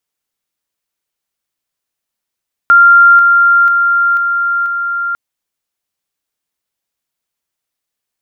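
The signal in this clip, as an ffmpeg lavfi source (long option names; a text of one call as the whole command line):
ffmpeg -f lavfi -i "aevalsrc='pow(10,(-2-3*floor(t/0.49))/20)*sin(2*PI*1390*t)':duration=2.45:sample_rate=44100" out.wav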